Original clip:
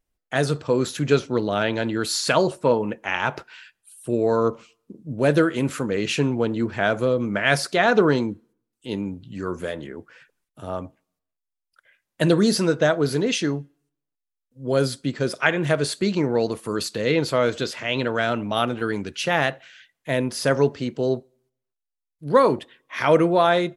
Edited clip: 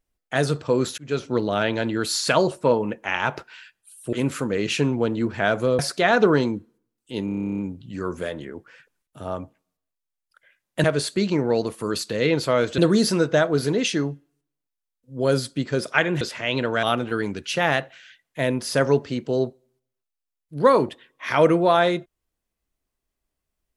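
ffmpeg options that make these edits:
-filter_complex "[0:a]asplit=19[a][b][c][d][e][f][g][h][i][j][k][l][m][n][o][p][q][r][s];[a]atrim=end=0.98,asetpts=PTS-STARTPTS,afade=t=out:st=0.976:d=0.004:c=hsin[t];[b]atrim=start=0.98:end=4.132,asetpts=PTS-STARTPTS,afade=t=in:d=0.35[u];[c]atrim=start=5.518:end=7.182[v];[d]atrim=start=7.538:end=9.032[w];[e]atrim=start=8.998:end=9.032[x];[f]atrim=start=8.998:end=9.032[y];[g]atrim=start=8.998:end=9.032[z];[h]atrim=start=8.998:end=9.032[aa];[i]atrim=start=8.998:end=9.032[ab];[j]atrim=start=8.998:end=9.032[ac];[k]atrim=start=8.998:end=9.032[ad];[l]atrim=start=8.998:end=9.032[ae];[m]atrim=start=8.998:end=9.032[af];[n]atrim=start=8.998:end=9.032[ag];[o]atrim=start=8.998:end=12.262[ah];[p]atrim=start=15.688:end=17.632[ai];[q]atrim=start=12.258:end=15.692[aj];[r]atrim=start=17.628:end=18.252[ak];[s]atrim=start=18.528[al];[t][u]concat=n=2:v=0:a=1[am];[am][v]acrossfade=d=0.004:c1=hsin:c2=hsin[an];[an][w]acrossfade=d=0.004:c1=hsin:c2=hsin[ao];[ao][x]acrossfade=d=0.004:c1=hsin:c2=hsin[ap];[ap][y]acrossfade=d=0.004:c1=hsin:c2=hsin[aq];[aq][z]acrossfade=d=0.004:c1=hsin:c2=hsin[ar];[ar][aa]acrossfade=d=0.004:c1=hsin:c2=hsin[as];[as][ab]acrossfade=d=0.004:c1=hsin:c2=hsin[at];[at][ac]acrossfade=d=0.004:c1=hsin:c2=hsin[au];[au][ad]acrossfade=d=0.004:c1=hsin:c2=hsin[av];[av][ae]acrossfade=d=0.004:c1=hsin:c2=hsin[aw];[aw][af]acrossfade=d=0.004:c1=hsin:c2=hsin[ax];[ax][ag]acrossfade=d=0.004:c1=hsin:c2=hsin[ay];[ay][ah]acrossfade=d=0.004:c1=hsin:c2=hsin[az];[az][ai]acrossfade=d=0.004:c1=hsin:c2=hsin[ba];[ba][aj]acrossfade=d=0.004:c1=hsin:c2=hsin[bb];[bb][ak]acrossfade=d=0.004:c1=hsin:c2=hsin[bc];[bc][al]acrossfade=d=0.004:c1=hsin:c2=hsin"

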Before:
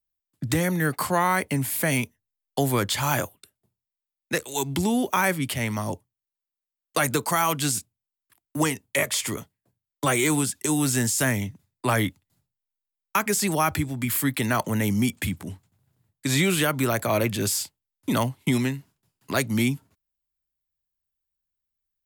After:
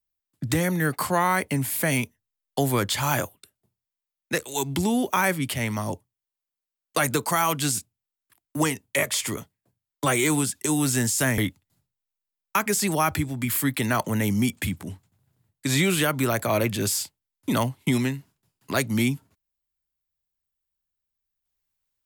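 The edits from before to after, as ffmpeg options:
-filter_complex "[0:a]asplit=2[a][b];[a]atrim=end=11.382[c];[b]atrim=start=11.978[d];[c][d]acrossfade=d=0.004:c1=hsin:c2=hsin"

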